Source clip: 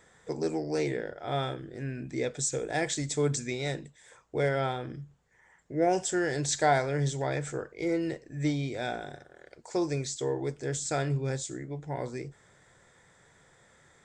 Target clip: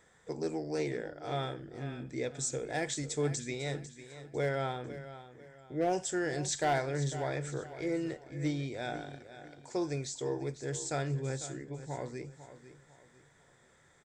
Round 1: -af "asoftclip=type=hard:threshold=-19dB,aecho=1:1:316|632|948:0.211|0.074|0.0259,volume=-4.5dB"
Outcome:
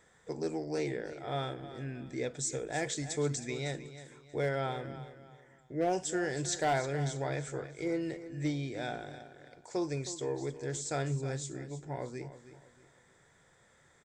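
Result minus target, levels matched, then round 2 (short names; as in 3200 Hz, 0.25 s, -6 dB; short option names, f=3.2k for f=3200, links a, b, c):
echo 0.183 s early
-af "asoftclip=type=hard:threshold=-19dB,aecho=1:1:499|998|1497:0.211|0.074|0.0259,volume=-4.5dB"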